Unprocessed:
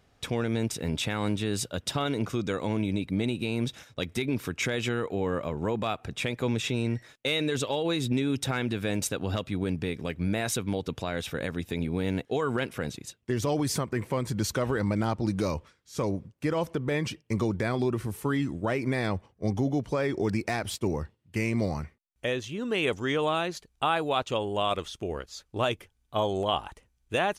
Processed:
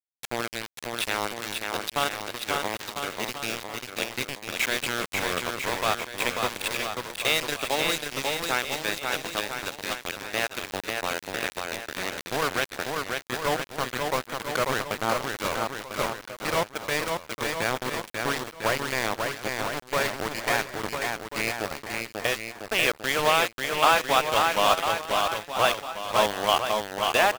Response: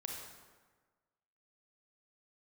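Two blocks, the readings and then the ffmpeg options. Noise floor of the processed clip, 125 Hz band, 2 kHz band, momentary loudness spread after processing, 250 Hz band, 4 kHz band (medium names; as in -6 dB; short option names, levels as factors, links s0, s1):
-49 dBFS, -10.0 dB, +8.0 dB, 9 LU, -7.5 dB, +6.5 dB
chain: -filter_complex "[0:a]acrossover=split=510 4400:gain=0.178 1 0.0891[s0][s1][s2];[s0][s1][s2]amix=inputs=3:normalize=0,aeval=exprs='val(0)*gte(abs(val(0)),0.0335)':c=same,aecho=1:1:540|999|1389|1721|2003:0.631|0.398|0.251|0.158|0.1,volume=2.37"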